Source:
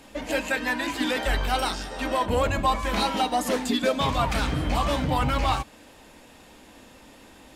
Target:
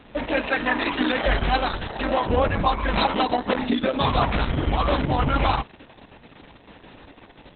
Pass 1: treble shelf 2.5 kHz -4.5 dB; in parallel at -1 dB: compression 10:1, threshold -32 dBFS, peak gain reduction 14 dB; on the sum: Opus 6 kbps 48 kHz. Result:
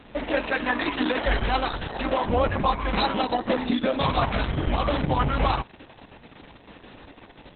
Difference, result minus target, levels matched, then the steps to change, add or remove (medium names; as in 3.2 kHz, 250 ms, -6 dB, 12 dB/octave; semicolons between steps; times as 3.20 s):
compression: peak gain reduction +7 dB
change: compression 10:1, threshold -24 dBFS, peak gain reduction 7 dB